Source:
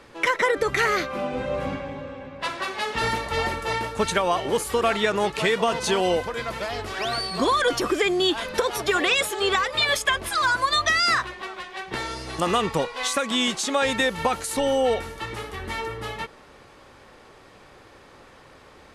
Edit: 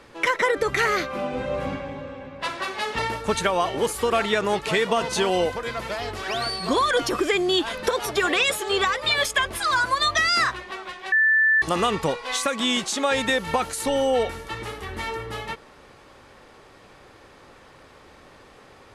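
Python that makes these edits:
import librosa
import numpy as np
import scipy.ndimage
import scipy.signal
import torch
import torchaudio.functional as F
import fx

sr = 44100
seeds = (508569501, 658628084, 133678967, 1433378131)

y = fx.edit(x, sr, fx.cut(start_s=2.99, length_s=0.71),
    fx.bleep(start_s=11.83, length_s=0.5, hz=1760.0, db=-15.0), tone=tone)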